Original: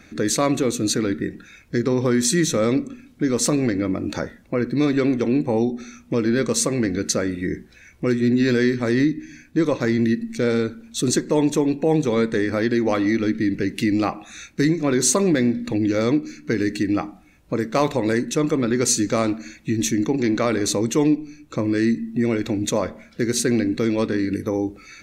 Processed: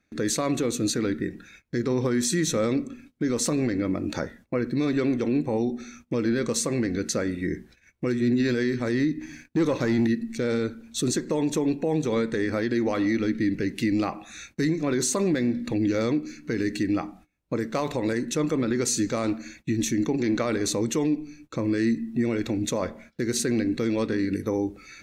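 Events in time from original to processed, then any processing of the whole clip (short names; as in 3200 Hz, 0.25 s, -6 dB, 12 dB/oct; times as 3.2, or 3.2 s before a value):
9.21–10.07 sample leveller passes 1
whole clip: gate -45 dBFS, range -21 dB; limiter -13 dBFS; gain -3 dB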